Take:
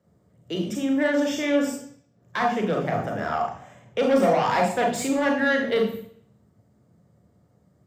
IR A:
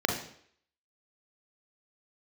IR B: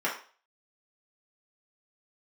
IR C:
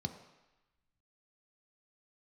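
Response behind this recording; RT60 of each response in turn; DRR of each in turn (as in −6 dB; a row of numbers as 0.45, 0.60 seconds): A; 0.60, 0.40, 1.0 seconds; 1.0, −5.0, 6.0 decibels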